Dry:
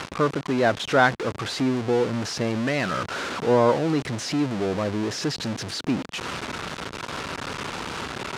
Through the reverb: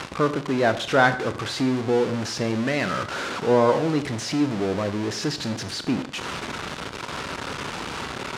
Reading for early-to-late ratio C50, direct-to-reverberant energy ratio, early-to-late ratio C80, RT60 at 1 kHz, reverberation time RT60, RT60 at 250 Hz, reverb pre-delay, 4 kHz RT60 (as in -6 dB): 12.5 dB, 9.5 dB, 15.0 dB, 0.65 s, 0.65 s, 0.60 s, 27 ms, 0.60 s